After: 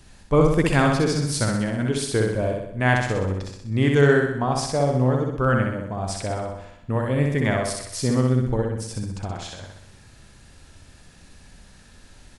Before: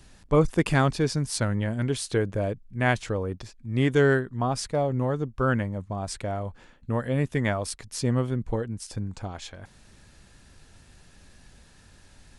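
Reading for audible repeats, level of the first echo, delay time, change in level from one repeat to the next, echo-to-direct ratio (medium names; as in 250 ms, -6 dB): 7, -3.0 dB, 63 ms, -5.0 dB, -1.5 dB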